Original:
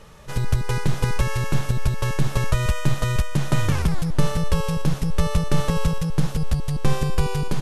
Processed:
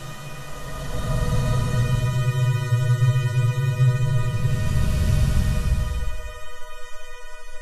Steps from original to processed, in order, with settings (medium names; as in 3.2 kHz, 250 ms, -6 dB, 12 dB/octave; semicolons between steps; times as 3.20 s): Paulstretch 23×, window 0.10 s, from 2.97 s; dynamic bell 140 Hz, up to +8 dB, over -35 dBFS, Q 0.94; trim -4.5 dB